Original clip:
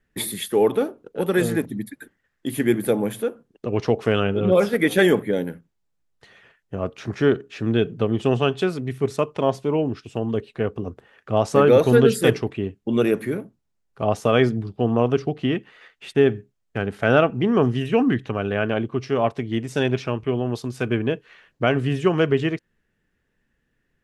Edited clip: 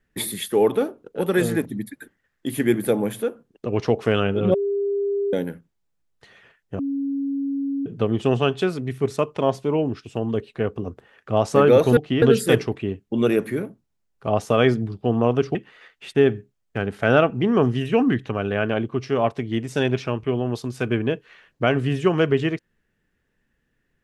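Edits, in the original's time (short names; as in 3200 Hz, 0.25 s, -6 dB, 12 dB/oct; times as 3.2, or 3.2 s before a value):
4.54–5.33 bleep 401 Hz -20 dBFS
6.79–7.86 bleep 277 Hz -22 dBFS
15.3–15.55 move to 11.97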